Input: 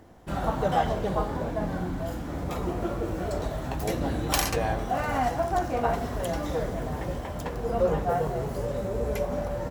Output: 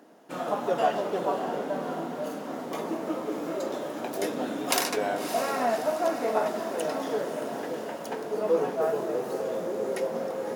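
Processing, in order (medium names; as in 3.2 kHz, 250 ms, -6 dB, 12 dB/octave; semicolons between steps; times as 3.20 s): high-pass 250 Hz 24 dB/octave; echo that smears into a reverb 549 ms, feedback 46%, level -9 dB; speed mistake 48 kHz file played as 44.1 kHz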